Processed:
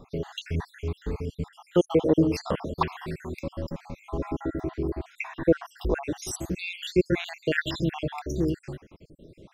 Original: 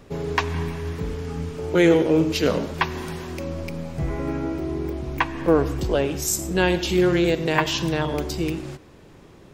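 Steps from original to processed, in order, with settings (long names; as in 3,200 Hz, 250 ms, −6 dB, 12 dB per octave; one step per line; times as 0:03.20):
time-frequency cells dropped at random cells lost 67%
high-shelf EQ 4,400 Hz −7.5 dB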